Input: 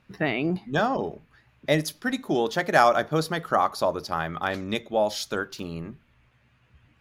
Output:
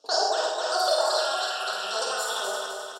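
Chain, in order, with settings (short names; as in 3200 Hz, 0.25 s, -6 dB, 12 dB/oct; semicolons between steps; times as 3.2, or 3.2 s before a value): regenerating reverse delay 0.304 s, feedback 70%, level -5 dB; band shelf 840 Hz +11.5 dB; in parallel at 0 dB: negative-ratio compressor -18 dBFS; on the sum: limiter -3.5 dBFS, peak gain reduction 8.5 dB; vowel filter i; speaker cabinet 110–6600 Hz, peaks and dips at 150 Hz -5 dB, 250 Hz -9 dB, 1000 Hz -5 dB, 1800 Hz +6 dB, 5700 Hz -4 dB; on a send: echo 0.12 s -4.5 dB; on the sum: non-linear reverb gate 0.34 s flat, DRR 0 dB; speed mistake 33 rpm record played at 78 rpm; gain +4 dB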